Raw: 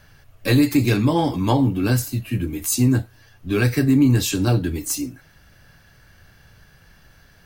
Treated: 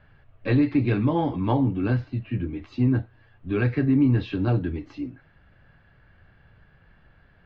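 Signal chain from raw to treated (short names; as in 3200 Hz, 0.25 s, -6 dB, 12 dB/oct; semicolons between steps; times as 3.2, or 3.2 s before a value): Bessel low-pass 2100 Hz, order 8; gain -4 dB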